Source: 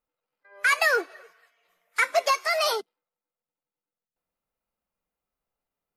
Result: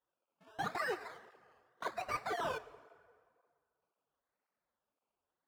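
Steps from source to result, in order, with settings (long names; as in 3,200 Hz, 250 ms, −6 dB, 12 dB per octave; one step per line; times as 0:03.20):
reversed playback
downward compressor, threshold −31 dBFS, peak gain reduction 13 dB
reversed playback
sample-and-hold swept by an LFO 20×, swing 60% 0.77 Hz
mid-hump overdrive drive 12 dB, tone 1,700 Hz, clips at −21 dBFS
dense smooth reverb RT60 2.2 s, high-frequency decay 0.65×, DRR 15.5 dB
wrong playback speed 44.1 kHz file played as 48 kHz
through-zero flanger with one copy inverted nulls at 1.9 Hz, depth 6.5 ms
level −2.5 dB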